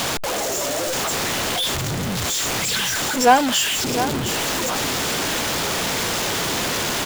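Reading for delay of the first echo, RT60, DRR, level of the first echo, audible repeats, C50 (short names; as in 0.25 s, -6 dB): 0.705 s, none, none, -11.0 dB, 2, none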